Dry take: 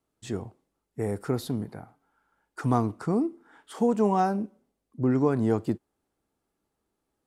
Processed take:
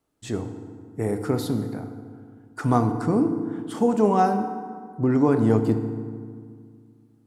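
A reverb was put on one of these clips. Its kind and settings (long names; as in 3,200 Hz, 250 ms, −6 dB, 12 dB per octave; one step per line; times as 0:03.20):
feedback delay network reverb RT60 2 s, low-frequency decay 1.3×, high-frequency decay 0.55×, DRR 7 dB
level +3.5 dB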